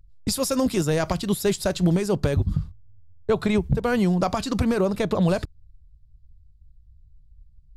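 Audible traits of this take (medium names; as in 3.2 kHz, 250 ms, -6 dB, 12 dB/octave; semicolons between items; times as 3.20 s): noise floor -54 dBFS; spectral tilt -6.0 dB/octave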